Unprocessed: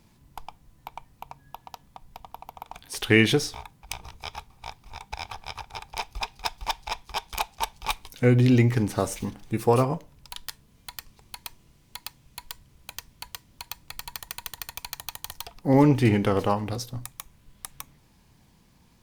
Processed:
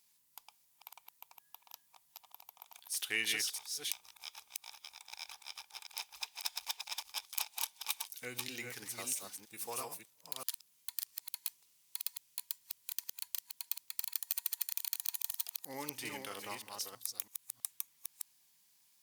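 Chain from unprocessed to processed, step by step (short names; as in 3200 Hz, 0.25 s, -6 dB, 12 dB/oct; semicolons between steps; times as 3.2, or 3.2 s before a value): reverse delay 0.326 s, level -4 dB; differentiator; gain -2.5 dB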